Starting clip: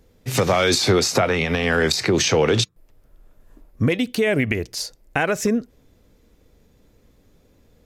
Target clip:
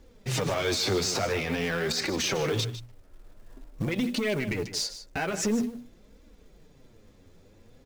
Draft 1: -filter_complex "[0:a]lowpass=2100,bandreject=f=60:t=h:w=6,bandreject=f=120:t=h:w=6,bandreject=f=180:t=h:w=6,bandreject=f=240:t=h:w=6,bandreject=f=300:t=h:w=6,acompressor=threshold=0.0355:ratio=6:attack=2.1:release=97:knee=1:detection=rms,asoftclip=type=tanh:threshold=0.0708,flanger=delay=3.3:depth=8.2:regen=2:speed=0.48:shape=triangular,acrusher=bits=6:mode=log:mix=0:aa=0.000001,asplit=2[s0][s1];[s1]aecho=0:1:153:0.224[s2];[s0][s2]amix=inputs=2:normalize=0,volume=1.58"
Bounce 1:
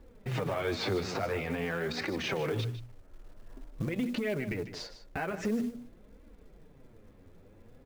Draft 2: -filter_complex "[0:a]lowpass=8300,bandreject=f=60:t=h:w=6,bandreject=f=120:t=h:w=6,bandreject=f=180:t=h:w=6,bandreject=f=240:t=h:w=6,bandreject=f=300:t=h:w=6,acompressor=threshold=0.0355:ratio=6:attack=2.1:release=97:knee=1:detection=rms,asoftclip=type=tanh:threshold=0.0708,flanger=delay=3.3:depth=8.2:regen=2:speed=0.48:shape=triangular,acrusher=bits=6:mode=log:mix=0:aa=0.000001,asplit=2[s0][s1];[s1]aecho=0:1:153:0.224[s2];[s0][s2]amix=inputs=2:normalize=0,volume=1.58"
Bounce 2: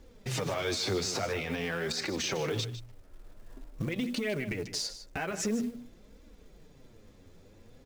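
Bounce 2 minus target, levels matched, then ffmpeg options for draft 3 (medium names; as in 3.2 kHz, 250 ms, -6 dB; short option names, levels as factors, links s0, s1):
compression: peak gain reduction +6 dB
-filter_complex "[0:a]lowpass=8300,bandreject=f=60:t=h:w=6,bandreject=f=120:t=h:w=6,bandreject=f=180:t=h:w=6,bandreject=f=240:t=h:w=6,bandreject=f=300:t=h:w=6,acompressor=threshold=0.0841:ratio=6:attack=2.1:release=97:knee=1:detection=rms,asoftclip=type=tanh:threshold=0.0708,flanger=delay=3.3:depth=8.2:regen=2:speed=0.48:shape=triangular,acrusher=bits=6:mode=log:mix=0:aa=0.000001,asplit=2[s0][s1];[s1]aecho=0:1:153:0.224[s2];[s0][s2]amix=inputs=2:normalize=0,volume=1.58"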